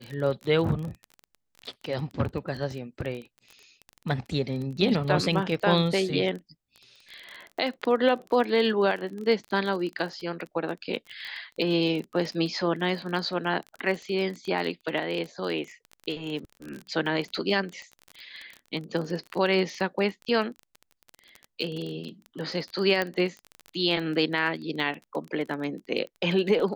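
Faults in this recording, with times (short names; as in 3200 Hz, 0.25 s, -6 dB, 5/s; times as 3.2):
crackle 24/s -32 dBFS
23.02 pop -13 dBFS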